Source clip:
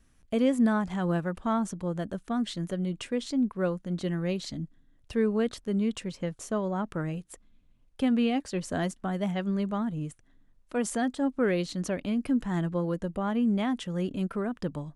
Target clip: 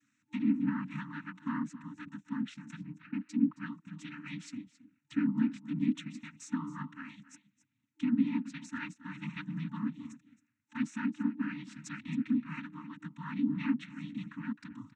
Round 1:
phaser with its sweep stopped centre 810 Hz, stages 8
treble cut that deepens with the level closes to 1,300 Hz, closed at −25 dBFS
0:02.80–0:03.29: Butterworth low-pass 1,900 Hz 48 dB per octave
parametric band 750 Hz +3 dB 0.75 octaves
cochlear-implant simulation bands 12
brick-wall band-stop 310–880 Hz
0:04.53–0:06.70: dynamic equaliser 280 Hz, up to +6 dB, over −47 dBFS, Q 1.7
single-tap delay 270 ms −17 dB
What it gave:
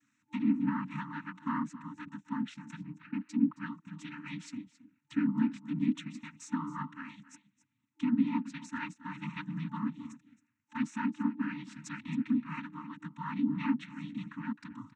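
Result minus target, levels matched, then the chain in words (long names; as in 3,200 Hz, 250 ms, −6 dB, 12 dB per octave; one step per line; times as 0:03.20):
1,000 Hz band +5.5 dB
phaser with its sweep stopped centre 810 Hz, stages 8
treble cut that deepens with the level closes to 1,300 Hz, closed at −25 dBFS
0:02.80–0:03.29: Butterworth low-pass 1,900 Hz 48 dB per octave
parametric band 750 Hz −7 dB 0.75 octaves
cochlear-implant simulation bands 12
brick-wall band-stop 310–880 Hz
0:04.53–0:06.70: dynamic equaliser 280 Hz, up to +6 dB, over −47 dBFS, Q 1.7
single-tap delay 270 ms −17 dB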